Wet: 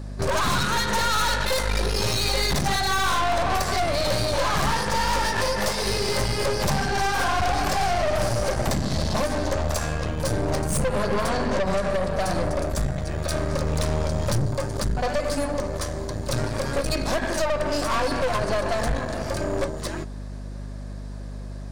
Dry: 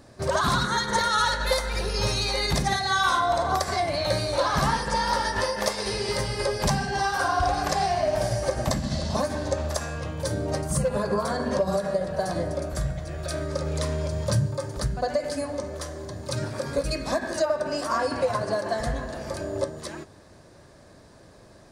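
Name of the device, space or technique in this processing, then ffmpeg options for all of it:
valve amplifier with mains hum: -filter_complex "[0:a]aeval=exprs='(tanh(31.6*val(0)+0.75)-tanh(0.75))/31.6':c=same,aeval=exprs='val(0)+0.00794*(sin(2*PI*50*n/s)+sin(2*PI*2*50*n/s)/2+sin(2*PI*3*50*n/s)/3+sin(2*PI*4*50*n/s)/4+sin(2*PI*5*50*n/s)/5)':c=same,asettb=1/sr,asplit=3[s0][s1][s2];[s0]atrim=end=11.294[s3];[s1]atrim=start=11.29:end=11.9,asetpts=PTS-STARTPTS,afade=t=in:d=0.004:c=qsin,afade=t=out:st=0.606:d=0.004:c=qsin,lowpass=9100[s4];[s2]atrim=start=11.896[s5];[s3][s4]acrossfade=d=0.004:c1=hsin:c2=qsin[s6];[s6][s5]acrossfade=d=0.004:c1=qsin:c2=hsin,volume=2.82"

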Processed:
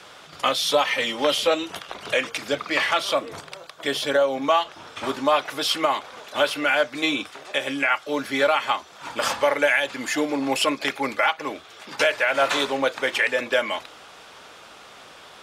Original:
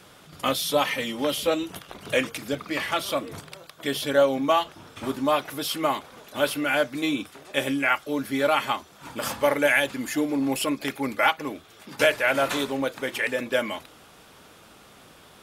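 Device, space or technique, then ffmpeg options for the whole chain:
DJ mixer with the lows and highs turned down: -filter_complex "[0:a]acrossover=split=440 7800:gain=0.251 1 0.178[s0][s1][s2];[s0][s1][s2]amix=inputs=3:normalize=0,alimiter=limit=0.15:level=0:latency=1:release=230,asettb=1/sr,asplit=3[s3][s4][s5];[s3]atrim=end=3.134[s6];[s4]atrim=start=3.13:end=4.42,asetpts=PTS-STARTPTS,afade=t=in:d=0.004:c=qsin,afade=t=out:st=1.286:d=0.004:c=qsin,equalizer=f=2900:t=o:w=2.8:g=-3.5[s7];[s5]atrim=start=4.416[s8];[s6][s7]acrossfade=d=0.004:c1=hsin:c2=qsin[s9];[s9][s8]acrossfade=d=0.004:c1=qsin:c2=hsin,volume=2.37"

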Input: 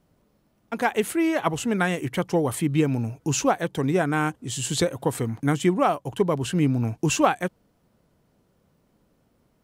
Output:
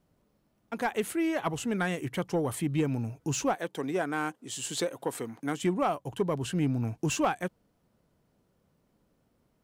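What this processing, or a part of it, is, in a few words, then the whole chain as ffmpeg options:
saturation between pre-emphasis and de-emphasis: -filter_complex "[0:a]highshelf=f=3000:g=8.5,asoftclip=type=tanh:threshold=0.266,highshelf=f=3000:g=-8.5,asettb=1/sr,asplit=3[s0][s1][s2];[s0]atrim=end=3.554[s3];[s1]atrim=start=3.55:end=5.63,asetpts=PTS-STARTPTS,afade=t=in:d=0.004:c=qsin,afade=t=out:st=2.076:d=0.004:c=qsin,highpass=260[s4];[s2]atrim=start=5.626[s5];[s3][s4]acrossfade=d=0.004:c1=hsin:c2=qsin[s6];[s6][s5]acrossfade=d=0.004:c1=qsin:c2=hsin,volume=0.531"

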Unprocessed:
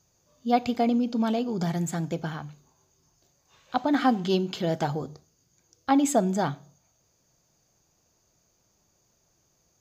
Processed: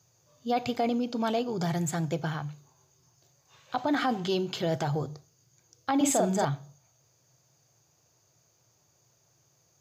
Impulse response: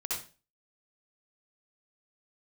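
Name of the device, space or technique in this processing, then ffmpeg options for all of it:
car stereo with a boomy subwoofer: -filter_complex "[0:a]lowshelf=f=160:t=q:w=3:g=8,alimiter=limit=0.1:level=0:latency=1:release=18,highpass=190,asettb=1/sr,asplit=3[s0][s1][s2];[s0]atrim=end=5.964[s3];[s1]atrim=start=5.96:end=6.45,asetpts=PTS-STARTPTS,afade=t=in:d=0.004:c=qsin,afade=t=out:st=0.486:d=0.004:c=qsin,asplit=2[s4][s5];[s5]adelay=47,volume=0.794[s6];[s4][s6]amix=inputs=2:normalize=0,atrim=end_sample=21609[s7];[s2]atrim=start=6.446[s8];[s3][s7]acrossfade=d=0.004:c1=hsin:c2=qsin[s9];[s9][s8]acrossfade=d=0.004:c1=qsin:c2=hsin,volume=1.19"

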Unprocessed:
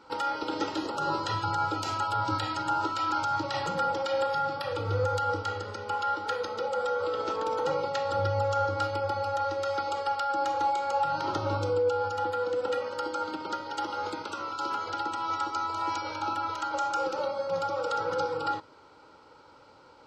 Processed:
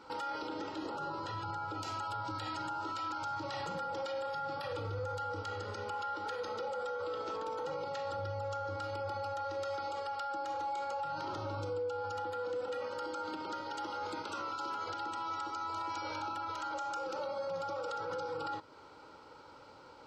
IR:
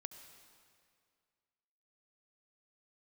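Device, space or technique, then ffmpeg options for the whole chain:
stacked limiters: -filter_complex "[0:a]alimiter=limit=0.0708:level=0:latency=1:release=300,alimiter=level_in=1.58:limit=0.0631:level=0:latency=1:release=27,volume=0.631,alimiter=level_in=2.24:limit=0.0631:level=0:latency=1:release=258,volume=0.447,asettb=1/sr,asplit=3[s0][s1][s2];[s0]atrim=end=0.474[s3];[s1]atrim=start=0.47:end=1.83,asetpts=PTS-STARTPTS,afade=t=in:d=0.004:c=qsin,afade=t=out:st=1.356:d=0.004:c=qsin,highshelf=f=3700:g=-7[s4];[s2]atrim=start=1.826[s5];[s3][s4]acrossfade=d=0.004:c1=hsin:c2=qsin[s6];[s6][s5]acrossfade=d=0.004:c1=qsin:c2=hsin"

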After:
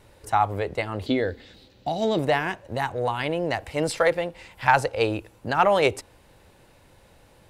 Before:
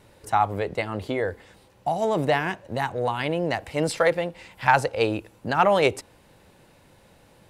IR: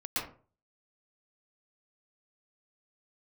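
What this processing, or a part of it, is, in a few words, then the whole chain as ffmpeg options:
low shelf boost with a cut just above: -filter_complex "[0:a]lowshelf=f=86:g=6.5,equalizer=f=180:t=o:w=1.1:g=-4.5,asettb=1/sr,asplit=3[s0][s1][s2];[s0]atrim=end=1.064[s3];[s1]atrim=start=1.06:end=2.19,asetpts=PTS-STARTPTS,afade=t=in:d=0.004:c=qsin,afade=t=out:st=1.126:d=0.004:c=qsin,equalizer=f=250:t=o:w=0.67:g=10,equalizer=f=1000:t=o:w=0.67:g=-8,equalizer=f=4000:t=o:w=0.67:g=12,equalizer=f=10000:t=o:w=0.67:g=-11[s4];[s2]atrim=start=2.186[s5];[s3][s4]acrossfade=d=0.004:c1=hsin:c2=qsin[s6];[s6][s5]acrossfade=d=0.004:c1=qsin:c2=hsin"

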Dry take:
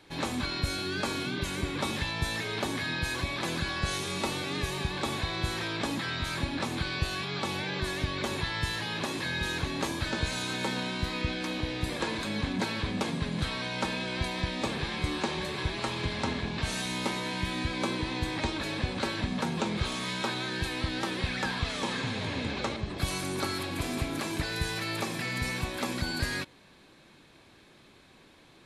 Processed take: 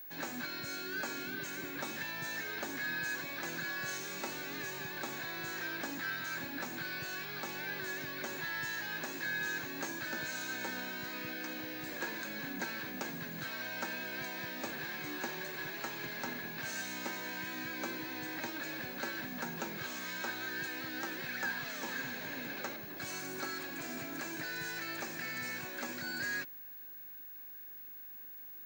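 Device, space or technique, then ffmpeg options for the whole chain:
old television with a line whistle: -af "highpass=f=160:w=0.5412,highpass=f=160:w=1.3066,equalizer=f=200:t=q:w=4:g=-8,equalizer=f=440:t=q:w=4:g=-4,equalizer=f=1100:t=q:w=4:g=-5,equalizer=f=1600:t=q:w=4:g=9,equalizer=f=3400:t=q:w=4:g=-7,equalizer=f=6500:t=q:w=4:g=7,lowpass=f=8400:w=0.5412,lowpass=f=8400:w=1.3066,aeval=exprs='val(0)+0.0126*sin(2*PI*15625*n/s)':c=same,volume=0.398"

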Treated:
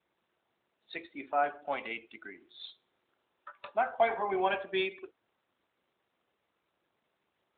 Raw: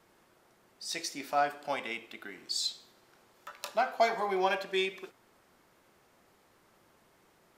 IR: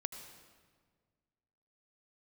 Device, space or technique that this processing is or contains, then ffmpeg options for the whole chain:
mobile call with aggressive noise cancelling: -af "highpass=180,afftdn=nr=13:nf=-44" -ar 8000 -c:a libopencore_amrnb -b:a 12200

